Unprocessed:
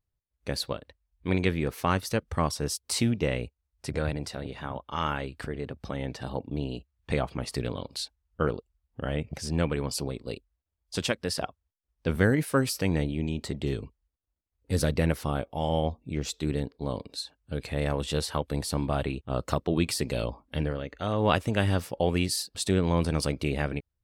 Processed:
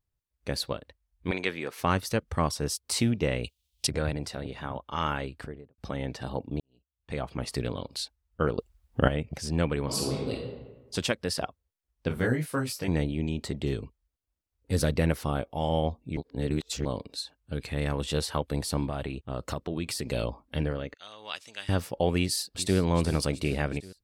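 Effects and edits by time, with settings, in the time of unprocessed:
0:01.31–0:01.79: meter weighting curve A
0:03.44–0:03.87: high shelf with overshoot 2,200 Hz +13.5 dB, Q 3
0:05.26–0:05.78: fade out and dull
0:06.60–0:07.40: fade in quadratic
0:08.58–0:09.08: clip gain +11 dB
0:09.84–0:10.32: thrown reverb, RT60 1.2 s, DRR −2.5 dB
0:12.08–0:12.88: micro pitch shift up and down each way 30 cents
0:16.17–0:16.85: reverse
0:17.53–0:17.99: parametric band 610 Hz −5.5 dB
0:18.87–0:20.06: downward compressor 2.5 to 1, threshold −30 dBFS
0:20.94–0:21.69: resonant band-pass 5,100 Hz, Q 1.2
0:22.20–0:22.78: delay throw 380 ms, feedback 60%, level −13.5 dB

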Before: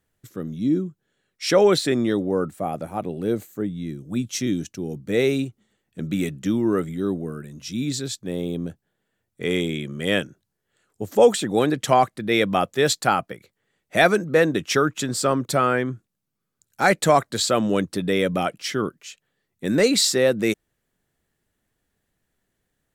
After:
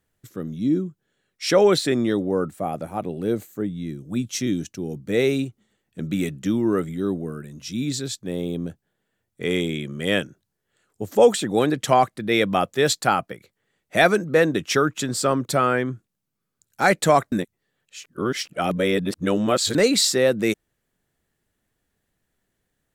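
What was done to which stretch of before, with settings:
0:17.32–0:19.75: reverse

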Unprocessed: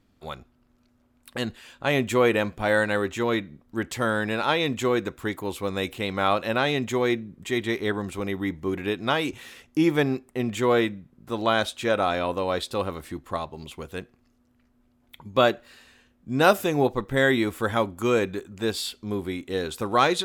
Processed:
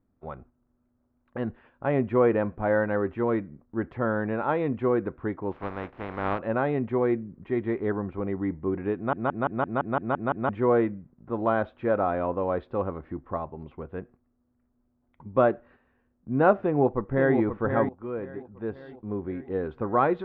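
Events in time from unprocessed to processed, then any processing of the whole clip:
0:05.51–0:06.38: compressing power law on the bin magnitudes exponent 0.27
0:08.96: stutter in place 0.17 s, 9 plays
0:16.58–0:17.36: delay throw 530 ms, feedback 50%, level −7 dB
0:17.89–0:19.72: fade in, from −14 dB
whole clip: Bessel low-pass filter 1,100 Hz, order 4; noise gate −52 dBFS, range −7 dB

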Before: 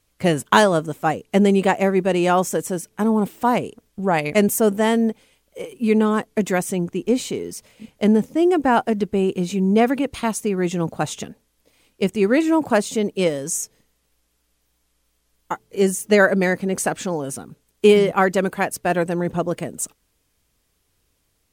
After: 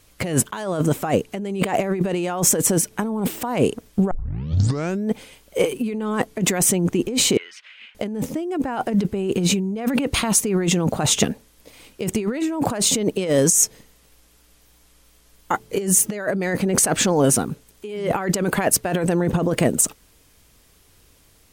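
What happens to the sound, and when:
0:04.11: tape start 0.99 s
0:07.37–0:07.95: Chebyshev band-pass filter 1,500–3,100 Hz
whole clip: compressor whose output falls as the input rises −27 dBFS, ratio −1; level +5.5 dB

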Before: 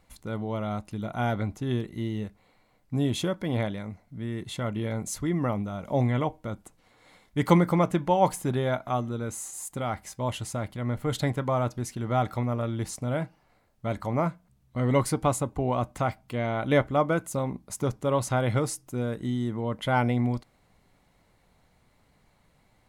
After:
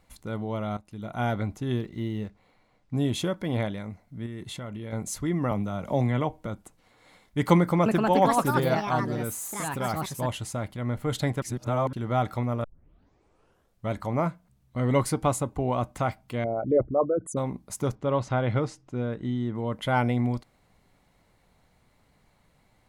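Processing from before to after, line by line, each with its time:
0:00.77–0:01.22: fade in, from −15 dB
0:01.76–0:02.97: linearly interpolated sample-rate reduction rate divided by 3×
0:04.26–0:04.93: downward compressor, threshold −33 dBFS
0:05.51–0:06.46: multiband upward and downward compressor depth 40%
0:07.57–0:10.60: delay with pitch and tempo change per echo 289 ms, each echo +4 semitones, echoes 2
0:11.42–0:11.93: reverse
0:12.64: tape start 1.27 s
0:16.44–0:17.37: spectral envelope exaggerated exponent 3
0:17.95–0:19.55: high-frequency loss of the air 150 metres

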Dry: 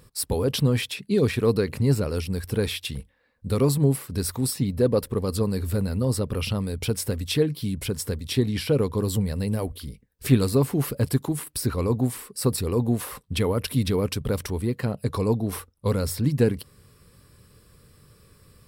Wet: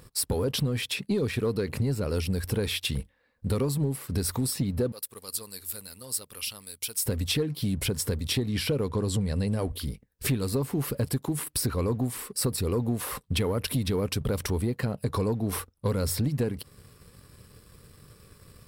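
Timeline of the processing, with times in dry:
0:04.92–0:07.06: first-order pre-emphasis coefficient 0.97
0:08.90–0:09.73: low-pass filter 9,800 Hz 24 dB per octave
whole clip: downward compressor, threshold −27 dBFS; leveller curve on the samples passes 1

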